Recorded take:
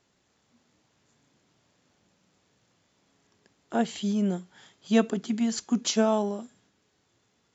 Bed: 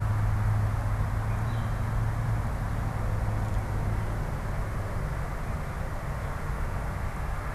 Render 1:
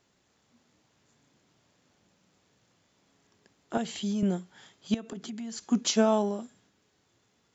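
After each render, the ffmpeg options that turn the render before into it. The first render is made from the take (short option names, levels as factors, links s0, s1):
-filter_complex "[0:a]asettb=1/sr,asplit=3[s0][s1][s2];[s0]atrim=end=3.774[s3];[s1]atrim=start=3.77:end=4.23,asetpts=PTS-STARTPTS,afade=t=in:d=0.004:c=qsin,afade=t=out:st=0.456:d=0.004:c=qsin,acrossover=split=120|3000[s4][s5][s6];[s5]acompressor=threshold=0.0398:ratio=6:attack=3.2:release=140:knee=2.83:detection=peak[s7];[s4][s7][s6]amix=inputs=3:normalize=0[s8];[s2]atrim=start=4.226[s9];[s3][s8]acrossfade=d=0.004:c1=hsin:c2=qsin[s10];[s10][s9]acrossfade=d=0.004:c1=qsin:c2=hsin,asettb=1/sr,asplit=3[s11][s12][s13];[s11]atrim=end=4.944[s14];[s12]atrim=start=4.94:end=5.68,asetpts=PTS-STARTPTS,afade=t=in:d=0.004:c=qsin,afade=t=out:st=0.736:d=0.004:c=qsin,acompressor=threshold=0.0178:ratio=8:attack=3.2:release=140:knee=1:detection=peak[s15];[s13]atrim=start=5.676[s16];[s14][s15]acrossfade=d=0.004:c1=hsin:c2=qsin[s17];[s17][s16]acrossfade=d=0.004:c1=qsin:c2=hsin"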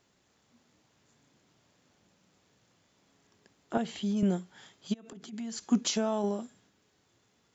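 -filter_complex "[0:a]asettb=1/sr,asplit=3[s0][s1][s2];[s0]atrim=end=3.734[s3];[s1]atrim=start=3.73:end=4.17,asetpts=PTS-STARTPTS,afade=t=in:d=0.004:c=qsin,afade=t=out:st=0.436:d=0.004:c=qsin,highshelf=f=4600:g=-10.5[s4];[s2]atrim=start=4.166[s5];[s3][s4]acrossfade=d=0.004:c1=hsin:c2=qsin[s6];[s6][s5]acrossfade=d=0.004:c1=qsin:c2=hsin,asplit=3[s7][s8][s9];[s7]afade=t=out:st=4.92:d=0.02[s10];[s8]acompressor=threshold=0.00631:ratio=5:attack=3.2:release=140:knee=1:detection=peak,afade=t=in:st=4.92:d=0.02,afade=t=out:st=5.32:d=0.02[s11];[s9]afade=t=in:st=5.32:d=0.02[s12];[s10][s11][s12]amix=inputs=3:normalize=0,asettb=1/sr,asplit=3[s13][s14][s15];[s13]atrim=end=5.844[s16];[s14]atrim=start=5.84:end=6.24,asetpts=PTS-STARTPTS,afade=t=in:d=0.004:c=qsin,afade=t=out:st=0.396:d=0.004:c=qsin,acompressor=threshold=0.0562:ratio=4:attack=3.2:release=140:knee=1:detection=peak[s17];[s15]atrim=start=6.236[s18];[s16][s17]acrossfade=d=0.004:c1=hsin:c2=qsin[s19];[s19][s18]acrossfade=d=0.004:c1=qsin:c2=hsin"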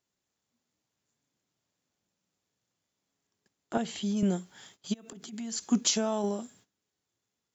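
-af "agate=range=0.141:threshold=0.00112:ratio=16:detection=peak,highshelf=f=6100:g=11.5"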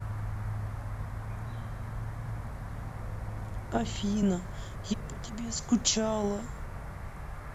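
-filter_complex "[1:a]volume=0.355[s0];[0:a][s0]amix=inputs=2:normalize=0"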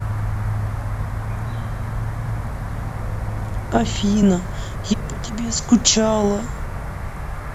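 -af "volume=3.98,alimiter=limit=0.891:level=0:latency=1"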